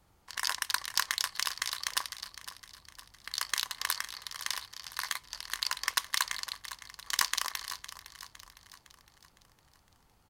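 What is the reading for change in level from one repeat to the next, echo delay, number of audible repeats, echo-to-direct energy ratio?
−6.5 dB, 509 ms, 4, −12.5 dB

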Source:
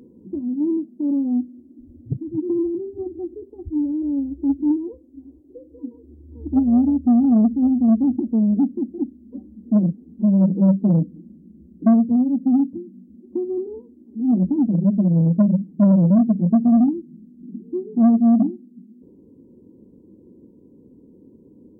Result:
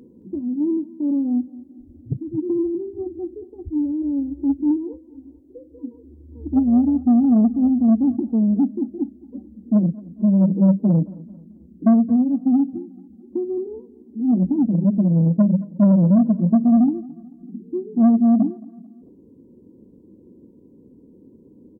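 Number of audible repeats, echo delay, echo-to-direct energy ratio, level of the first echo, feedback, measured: 2, 220 ms, −20.5 dB, −21.0 dB, 39%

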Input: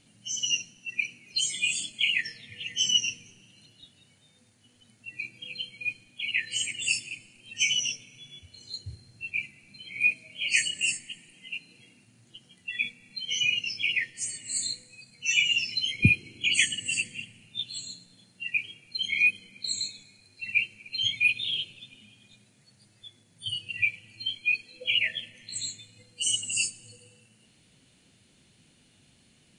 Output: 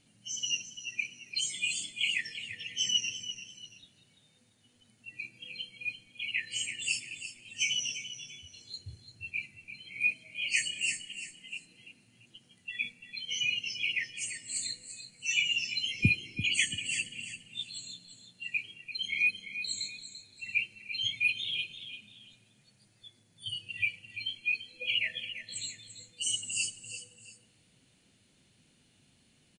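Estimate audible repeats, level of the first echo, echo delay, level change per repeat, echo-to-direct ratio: 2, −11.0 dB, 341 ms, −9.5 dB, −10.5 dB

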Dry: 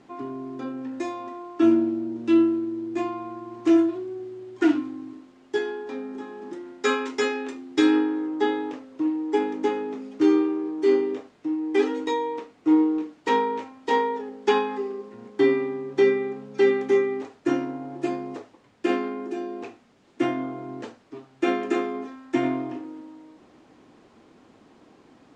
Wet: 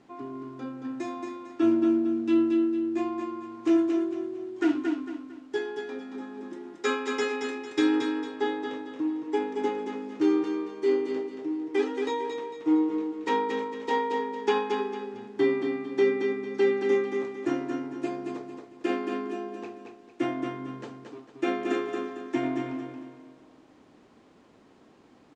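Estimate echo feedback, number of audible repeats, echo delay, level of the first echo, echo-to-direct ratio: 36%, 4, 226 ms, −5.0 dB, −4.5 dB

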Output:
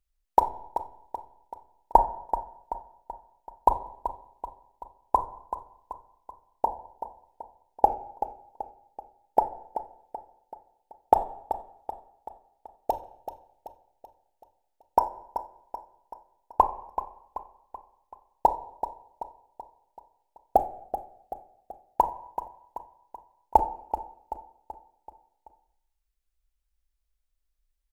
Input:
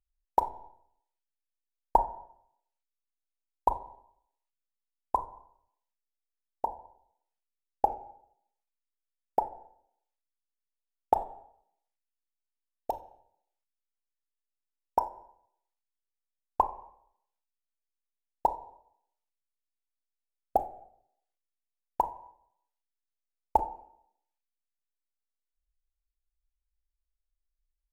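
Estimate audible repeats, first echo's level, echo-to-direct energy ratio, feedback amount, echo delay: 5, −11.0 dB, −9.5 dB, 51%, 382 ms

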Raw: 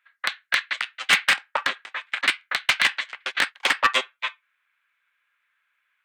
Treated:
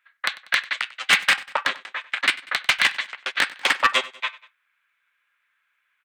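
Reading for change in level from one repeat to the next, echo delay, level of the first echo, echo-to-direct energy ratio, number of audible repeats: −5.5 dB, 96 ms, −20.0 dB, −19.0 dB, 2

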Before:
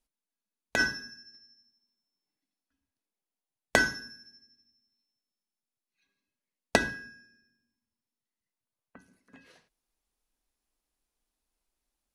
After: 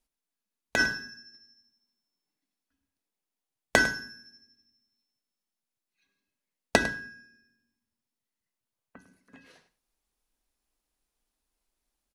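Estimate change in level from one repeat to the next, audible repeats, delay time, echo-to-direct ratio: repeats not evenly spaced, 1, 102 ms, −15.0 dB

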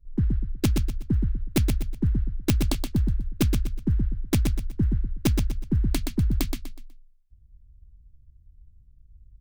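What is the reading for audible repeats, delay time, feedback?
4, 123 ms, 32%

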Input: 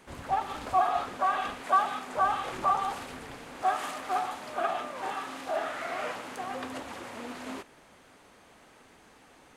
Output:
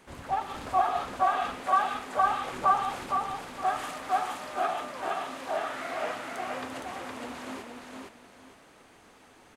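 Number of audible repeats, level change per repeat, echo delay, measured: 2, −11.5 dB, 464 ms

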